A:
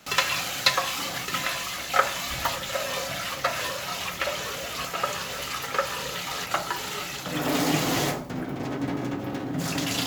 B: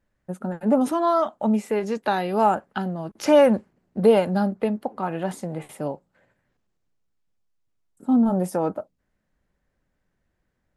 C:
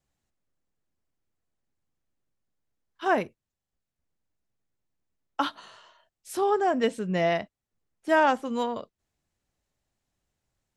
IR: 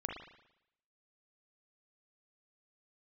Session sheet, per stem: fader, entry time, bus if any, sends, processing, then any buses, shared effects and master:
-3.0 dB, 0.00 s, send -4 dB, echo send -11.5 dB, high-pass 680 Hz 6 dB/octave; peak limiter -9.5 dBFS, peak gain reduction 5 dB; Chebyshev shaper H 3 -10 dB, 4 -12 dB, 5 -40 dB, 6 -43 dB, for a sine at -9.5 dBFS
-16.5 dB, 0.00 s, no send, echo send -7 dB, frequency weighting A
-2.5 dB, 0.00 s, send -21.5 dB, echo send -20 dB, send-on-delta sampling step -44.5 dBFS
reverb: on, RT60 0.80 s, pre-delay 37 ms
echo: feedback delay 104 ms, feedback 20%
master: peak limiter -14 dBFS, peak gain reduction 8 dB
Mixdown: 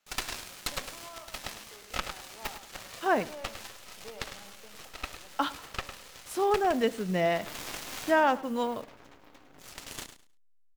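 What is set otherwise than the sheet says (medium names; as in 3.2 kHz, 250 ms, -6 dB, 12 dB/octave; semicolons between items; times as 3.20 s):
stem A: send off; stem B -16.5 dB -> -27.5 dB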